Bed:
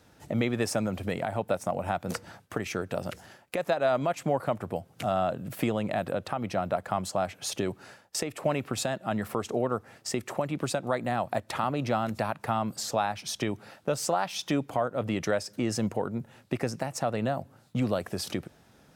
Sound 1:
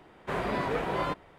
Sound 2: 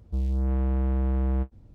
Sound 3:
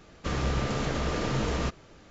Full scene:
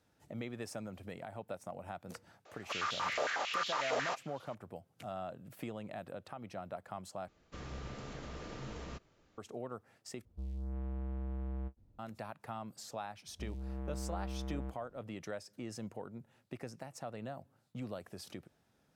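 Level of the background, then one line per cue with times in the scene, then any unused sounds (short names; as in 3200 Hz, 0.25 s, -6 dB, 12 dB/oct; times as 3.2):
bed -15 dB
2.45 add 3 -5.5 dB + stepped high-pass 11 Hz 600–3400 Hz
7.28 replace with 3 -16.5 dB
10.25 replace with 2 -14.5 dB
13.27 add 2 -12 dB + low shelf 74 Hz -9 dB
not used: 1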